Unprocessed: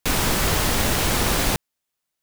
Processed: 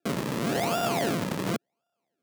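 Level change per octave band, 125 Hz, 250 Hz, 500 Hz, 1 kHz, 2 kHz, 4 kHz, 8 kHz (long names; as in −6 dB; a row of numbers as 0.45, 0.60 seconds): −7.5, −2.0, −2.0, −4.5, −9.5, −11.5, −14.5 decibels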